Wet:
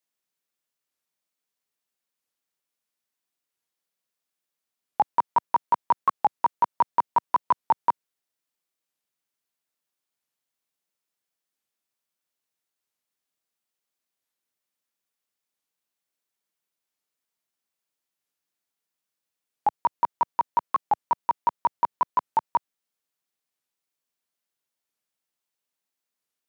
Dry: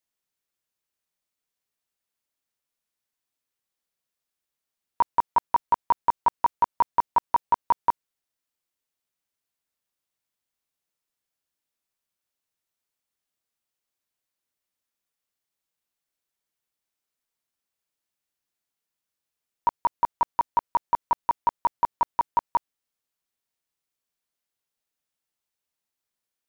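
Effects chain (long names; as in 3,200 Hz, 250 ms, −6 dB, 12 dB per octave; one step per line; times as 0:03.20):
high-pass filter 130 Hz 12 dB per octave
wow of a warped record 45 rpm, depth 250 cents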